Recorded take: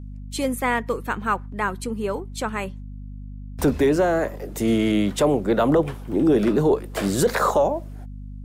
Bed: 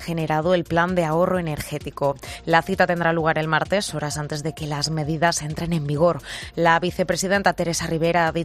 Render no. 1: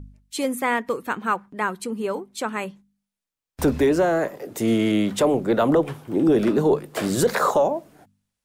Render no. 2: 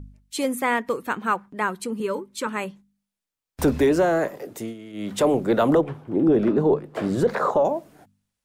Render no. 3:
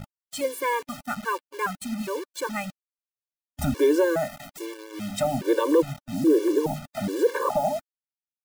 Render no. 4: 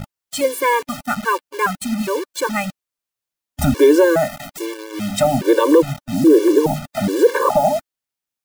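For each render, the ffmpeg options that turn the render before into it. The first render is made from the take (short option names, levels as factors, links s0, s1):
-af "bandreject=f=50:t=h:w=4,bandreject=f=100:t=h:w=4,bandreject=f=150:t=h:w=4,bandreject=f=200:t=h:w=4,bandreject=f=250:t=h:w=4"
-filter_complex "[0:a]asettb=1/sr,asplit=3[s0][s1][s2];[s0]atrim=end=2.004[s3];[s1]atrim=start=2:end=2.47,asetpts=PTS-STARTPTS,afade=t=in:d=0.004:c=qsin,afade=t=out:st=0.466:d=0.004:c=qsin,asuperstop=centerf=710:order=20:qfactor=3[s4];[s2]atrim=start=2.466[s5];[s3][s4]acrossfade=d=0.004:c1=hsin:c2=qsin[s6];[s6][s5]acrossfade=d=0.004:c1=qsin:c2=hsin,asettb=1/sr,asplit=3[s7][s8][s9];[s7]atrim=end=5.814[s10];[s8]atrim=start=5.81:end=7.65,asetpts=PTS-STARTPTS,afade=t=in:d=0.004:c=qsin,afade=t=out:st=1.836:d=0.004:c=qsin,lowpass=f=1200:p=1[s11];[s9]atrim=start=7.646[s12];[s10][s11]acrossfade=d=0.004:c1=hsin:c2=qsin[s13];[s13][s12]acrossfade=d=0.004:c1=qsin:c2=hsin,asplit=3[s14][s15][s16];[s14]atrim=end=4.74,asetpts=PTS-STARTPTS,afade=t=out:st=4.41:d=0.33:silence=0.1[s17];[s15]atrim=start=4.74:end=4.93,asetpts=PTS-STARTPTS,volume=0.1[s18];[s16]atrim=start=4.93,asetpts=PTS-STARTPTS,afade=t=in:d=0.33:silence=0.1[s19];[s17][s18][s19]concat=n=3:v=0:a=1"
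-af "acrusher=bits=5:mix=0:aa=0.000001,afftfilt=real='re*gt(sin(2*PI*1.2*pts/sr)*(1-2*mod(floor(b*sr/1024/300),2)),0)':imag='im*gt(sin(2*PI*1.2*pts/sr)*(1-2*mod(floor(b*sr/1024/300),2)),0)':win_size=1024:overlap=0.75"
-af "volume=2.82,alimiter=limit=0.708:level=0:latency=1"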